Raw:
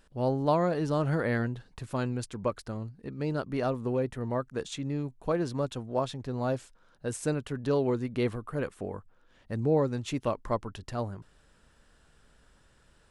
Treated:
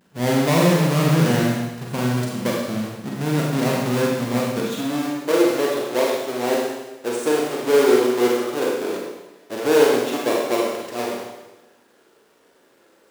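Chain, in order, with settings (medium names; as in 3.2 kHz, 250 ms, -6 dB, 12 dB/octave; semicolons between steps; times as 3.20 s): square wave that keeps the level; high-pass sweep 170 Hz -> 370 Hz, 4.43–5.22 s; Schroeder reverb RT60 1.1 s, combs from 33 ms, DRR -3 dB; trim -1 dB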